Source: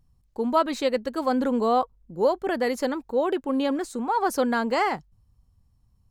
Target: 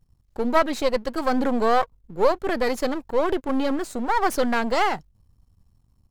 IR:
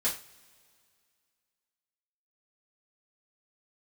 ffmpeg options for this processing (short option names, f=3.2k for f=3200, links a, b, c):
-af "aeval=exprs='if(lt(val(0),0),0.251*val(0),val(0))':c=same,volume=5.5dB"